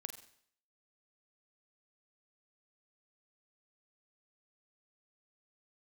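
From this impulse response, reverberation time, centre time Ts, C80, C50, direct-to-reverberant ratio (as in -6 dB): 0.60 s, 14 ms, 12.0 dB, 9.5 dB, 6.5 dB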